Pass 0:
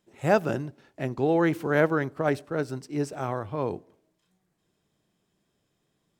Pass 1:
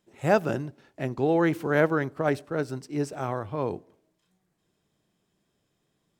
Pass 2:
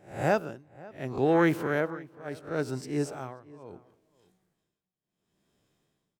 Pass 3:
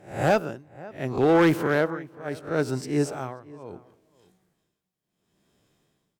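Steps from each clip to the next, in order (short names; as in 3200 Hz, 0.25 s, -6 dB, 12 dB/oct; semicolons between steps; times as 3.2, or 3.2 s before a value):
nothing audible
spectral swells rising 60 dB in 0.39 s; tremolo 0.71 Hz, depth 96%; outdoor echo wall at 92 m, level -21 dB
one-sided clip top -19 dBFS; gain +5.5 dB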